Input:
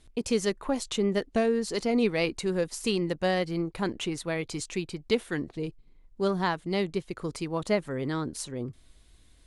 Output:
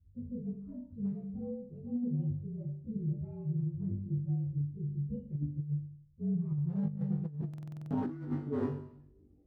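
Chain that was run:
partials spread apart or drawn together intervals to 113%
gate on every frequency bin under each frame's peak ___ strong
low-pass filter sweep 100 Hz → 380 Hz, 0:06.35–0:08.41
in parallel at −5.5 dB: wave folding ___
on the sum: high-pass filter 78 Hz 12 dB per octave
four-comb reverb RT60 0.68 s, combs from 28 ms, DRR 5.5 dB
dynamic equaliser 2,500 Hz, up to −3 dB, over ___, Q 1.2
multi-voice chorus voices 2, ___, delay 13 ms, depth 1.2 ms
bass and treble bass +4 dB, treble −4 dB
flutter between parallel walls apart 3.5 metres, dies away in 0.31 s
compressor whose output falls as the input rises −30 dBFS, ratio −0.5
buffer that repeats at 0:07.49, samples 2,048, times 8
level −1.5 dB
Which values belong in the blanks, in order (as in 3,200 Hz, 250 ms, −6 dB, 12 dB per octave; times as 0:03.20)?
−35 dB, −33 dBFS, −57 dBFS, 0.49 Hz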